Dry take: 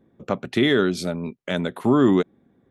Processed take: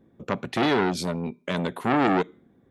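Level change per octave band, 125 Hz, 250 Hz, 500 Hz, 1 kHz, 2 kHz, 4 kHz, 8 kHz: -3.5, -5.0, -4.5, +4.5, -1.0, -4.0, -0.5 dB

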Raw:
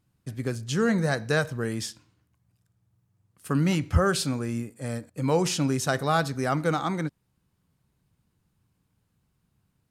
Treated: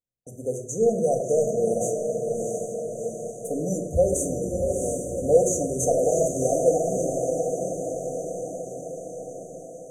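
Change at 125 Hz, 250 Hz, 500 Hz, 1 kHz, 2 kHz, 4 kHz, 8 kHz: -5.0 dB, -2.5 dB, +9.0 dB, -1.5 dB, under -40 dB, under -40 dB, +7.5 dB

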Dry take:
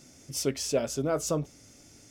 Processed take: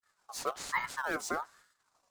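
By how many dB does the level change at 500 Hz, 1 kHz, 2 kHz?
-12.0, +5.0, +9.0 dB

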